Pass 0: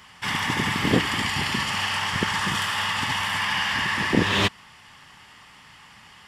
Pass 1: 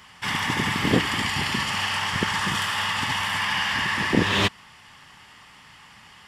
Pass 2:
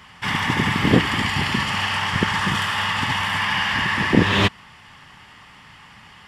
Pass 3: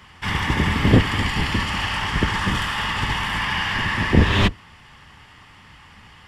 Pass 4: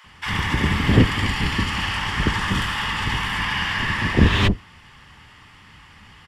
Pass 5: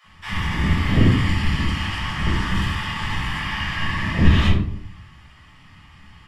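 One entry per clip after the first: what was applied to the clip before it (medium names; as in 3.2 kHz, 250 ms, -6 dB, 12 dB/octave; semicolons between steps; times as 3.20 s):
no audible change
tone controls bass +3 dB, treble -6 dB; trim +3.5 dB
octave divider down 1 oct, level +3 dB; trim -2 dB
bands offset in time highs, lows 40 ms, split 660 Hz
simulated room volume 600 m³, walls furnished, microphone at 6.1 m; trim -11 dB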